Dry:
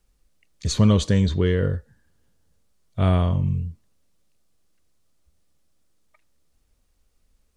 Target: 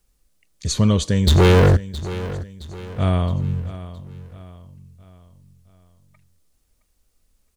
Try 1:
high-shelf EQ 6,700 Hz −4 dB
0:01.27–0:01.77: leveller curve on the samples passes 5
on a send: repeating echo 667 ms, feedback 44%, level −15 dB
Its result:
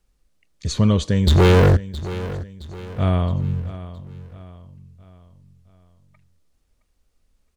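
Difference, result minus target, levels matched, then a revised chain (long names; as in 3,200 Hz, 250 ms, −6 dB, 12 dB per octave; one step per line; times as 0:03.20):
8,000 Hz band −5.5 dB
high-shelf EQ 6,700 Hz +8 dB
0:01.27–0:01.77: leveller curve on the samples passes 5
on a send: repeating echo 667 ms, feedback 44%, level −15 dB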